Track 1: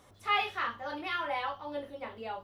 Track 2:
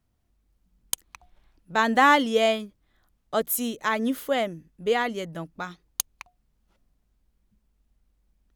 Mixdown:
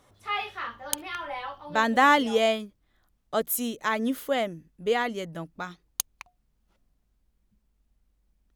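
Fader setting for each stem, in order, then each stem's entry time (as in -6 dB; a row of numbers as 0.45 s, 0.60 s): -1.5 dB, -1.5 dB; 0.00 s, 0.00 s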